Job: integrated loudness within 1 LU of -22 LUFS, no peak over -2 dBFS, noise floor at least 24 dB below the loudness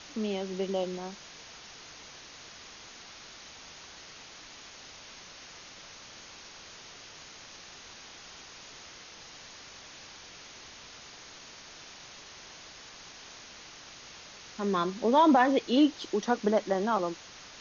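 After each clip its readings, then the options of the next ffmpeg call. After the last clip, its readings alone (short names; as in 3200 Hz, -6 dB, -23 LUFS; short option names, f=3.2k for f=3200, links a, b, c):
noise floor -49 dBFS; noise floor target -52 dBFS; loudness -28.0 LUFS; peak -12.0 dBFS; loudness target -22.0 LUFS
-> -af "afftdn=nr=6:nf=-49"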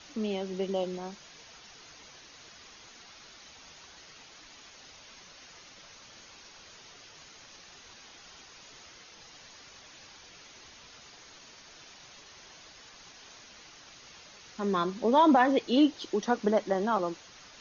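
noise floor -53 dBFS; loudness -27.5 LUFS; peak -12.0 dBFS; loudness target -22.0 LUFS
-> -af "volume=5.5dB"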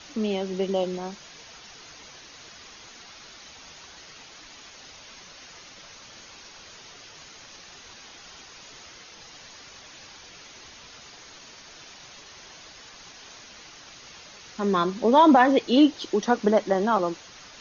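loudness -22.0 LUFS; peak -6.5 dBFS; noise floor -47 dBFS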